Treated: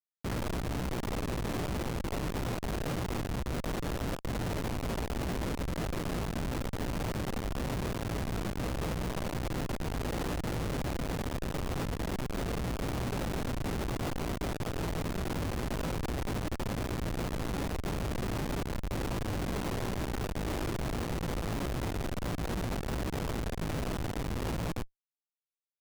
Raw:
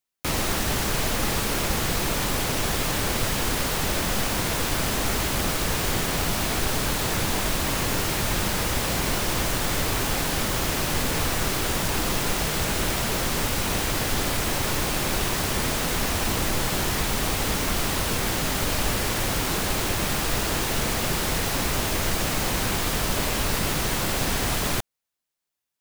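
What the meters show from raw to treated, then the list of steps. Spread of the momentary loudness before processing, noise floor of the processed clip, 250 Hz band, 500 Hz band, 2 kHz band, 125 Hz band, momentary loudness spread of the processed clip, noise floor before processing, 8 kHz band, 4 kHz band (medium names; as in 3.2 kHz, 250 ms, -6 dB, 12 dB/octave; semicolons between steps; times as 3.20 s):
0 LU, -49 dBFS, -5.5 dB, -7.5 dB, -14.5 dB, -5.5 dB, 1 LU, -27 dBFS, -19.5 dB, -17.0 dB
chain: median filter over 25 samples; de-hum 220.3 Hz, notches 18; gain riding 0.5 s; chorus 2.3 Hz, delay 16 ms, depth 2.7 ms; Schmitt trigger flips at -35.5 dBFS; vibrato 1.4 Hz 28 cents; trim -2.5 dB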